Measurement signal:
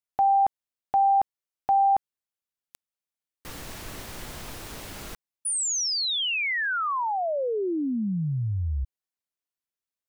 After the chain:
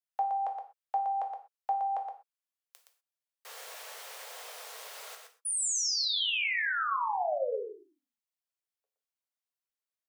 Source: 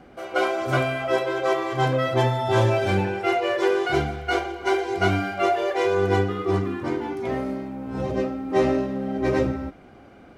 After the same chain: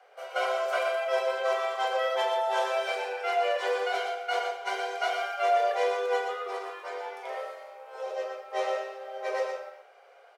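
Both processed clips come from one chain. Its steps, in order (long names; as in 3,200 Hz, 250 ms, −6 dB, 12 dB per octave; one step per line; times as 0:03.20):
Butterworth high-pass 450 Hz 72 dB per octave
on a send: single-tap delay 119 ms −6 dB
on the sum: reverb whose tail is shaped and stops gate 150 ms falling, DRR 4.5 dB
level −6 dB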